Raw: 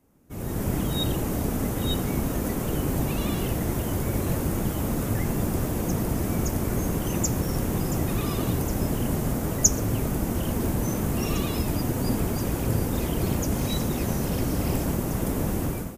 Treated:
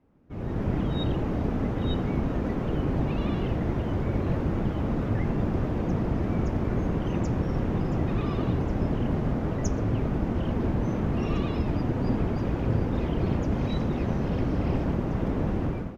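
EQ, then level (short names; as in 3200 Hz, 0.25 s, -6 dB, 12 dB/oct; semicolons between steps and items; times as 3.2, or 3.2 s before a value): air absorption 250 m; high shelf 5800 Hz -6.5 dB; 0.0 dB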